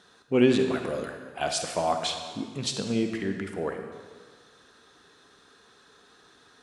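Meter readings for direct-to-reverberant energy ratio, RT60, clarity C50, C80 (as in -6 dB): 5.0 dB, 1.7 s, 5.5 dB, 7.0 dB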